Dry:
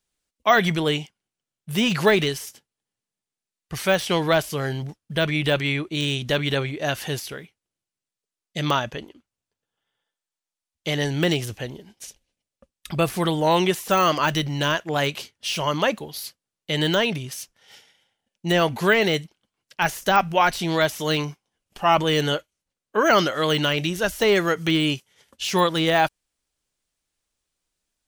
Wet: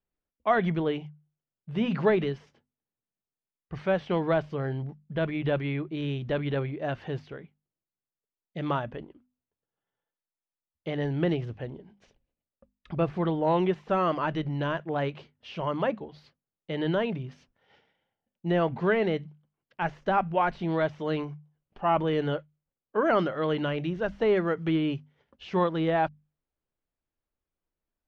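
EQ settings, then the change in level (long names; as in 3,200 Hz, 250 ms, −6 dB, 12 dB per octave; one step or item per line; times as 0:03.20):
low-pass filter 1,000 Hz 6 dB per octave
high-frequency loss of the air 200 metres
mains-hum notches 50/100/150/200/250 Hz
−3.0 dB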